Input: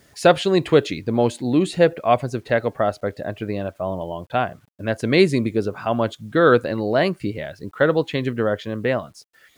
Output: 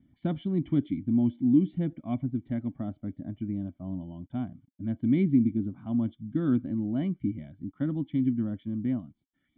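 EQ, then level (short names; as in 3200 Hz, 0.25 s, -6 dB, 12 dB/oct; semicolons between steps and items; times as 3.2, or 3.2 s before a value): vocal tract filter i; air absorption 150 m; fixed phaser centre 1100 Hz, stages 4; +7.0 dB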